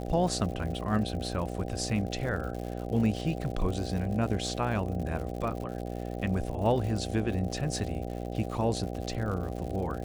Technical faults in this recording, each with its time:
buzz 60 Hz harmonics 13 -36 dBFS
crackle 130/s -37 dBFS

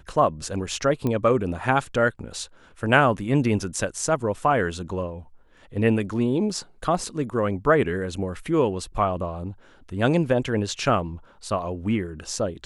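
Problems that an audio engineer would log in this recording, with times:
1.07 pop -14 dBFS

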